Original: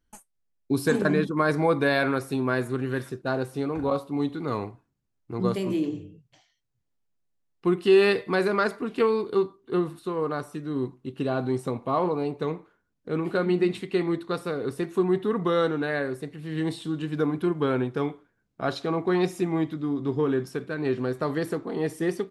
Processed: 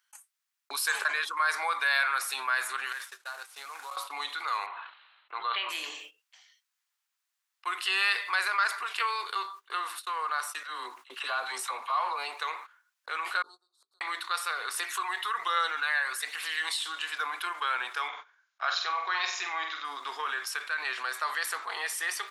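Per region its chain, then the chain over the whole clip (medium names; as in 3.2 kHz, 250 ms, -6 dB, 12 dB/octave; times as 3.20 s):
2.92–3.97 s: CVSD coder 64 kbps + compression 16:1, threshold -37 dBFS
4.66–5.69 s: rippled Chebyshev low-pass 4.1 kHz, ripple 3 dB + decay stretcher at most 21 dB/s
10.63–12.18 s: phase dispersion lows, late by 59 ms, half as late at 500 Hz + tape noise reduction on one side only decoder only
13.42–14.01 s: elliptic band-stop 1.3–4.1 kHz, stop band 50 dB + inverted gate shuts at -27 dBFS, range -35 dB + hum notches 50/100/150/200/250/300/350/400/450 Hz
14.74–16.77 s: phaser 1.2 Hz, delay 1.2 ms, feedback 39% + tape noise reduction on one side only encoder only
18.08–19.85 s: Chebyshev low-pass 7.1 kHz, order 10 + flutter echo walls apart 8 m, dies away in 0.37 s
whole clip: gate -40 dBFS, range -30 dB; high-pass 1.1 kHz 24 dB/octave; level flattener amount 50%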